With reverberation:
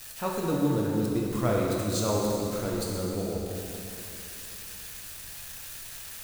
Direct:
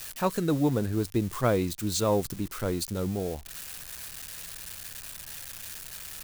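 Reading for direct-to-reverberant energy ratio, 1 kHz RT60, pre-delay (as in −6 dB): −3.0 dB, 2.8 s, 4 ms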